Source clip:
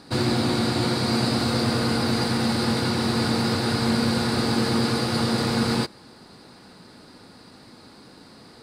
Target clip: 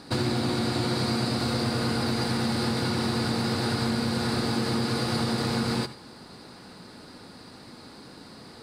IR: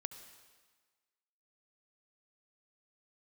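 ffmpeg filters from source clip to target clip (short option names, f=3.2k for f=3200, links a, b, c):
-filter_complex "[0:a]acompressor=threshold=-25dB:ratio=6[a];[1:a]atrim=start_sample=2205,atrim=end_sample=4410[b];[a][b]afir=irnorm=-1:irlink=0,volume=4.5dB"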